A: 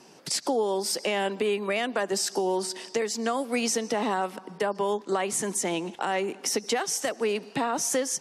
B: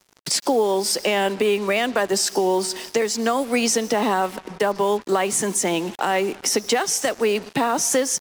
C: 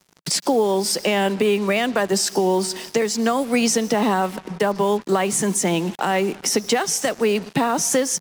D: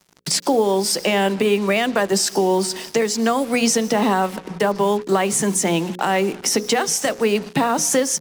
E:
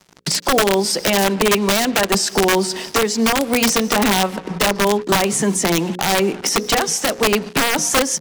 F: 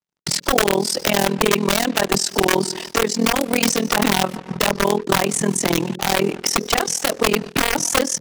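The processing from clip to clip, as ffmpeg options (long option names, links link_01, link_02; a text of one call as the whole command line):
ffmpeg -i in.wav -af "acrusher=bits=6:mix=0:aa=0.5,volume=6.5dB" out.wav
ffmpeg -i in.wav -af "equalizer=frequency=170:width_type=o:width=0.81:gain=8" out.wav
ffmpeg -i in.wav -af "bandreject=frequency=60:width_type=h:width=6,bandreject=frequency=120:width_type=h:width=6,bandreject=frequency=180:width_type=h:width=6,bandreject=frequency=240:width_type=h:width=6,bandreject=frequency=300:width_type=h:width=6,bandreject=frequency=360:width_type=h:width=6,bandreject=frequency=420:width_type=h:width=6,bandreject=frequency=480:width_type=h:width=6,bandreject=frequency=540:width_type=h:width=6,volume=1.5dB" out.wav
ffmpeg -i in.wav -af "highshelf=frequency=10000:gain=-9.5,aeval=exprs='(mod(3.55*val(0)+1,2)-1)/3.55':channel_layout=same,alimiter=limit=-16dB:level=0:latency=1:release=488,volume=7dB" out.wav
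ffmpeg -i in.wav -af "agate=range=-33dB:threshold=-28dB:ratio=3:detection=peak,tremolo=f=41:d=0.947,volume=2dB" out.wav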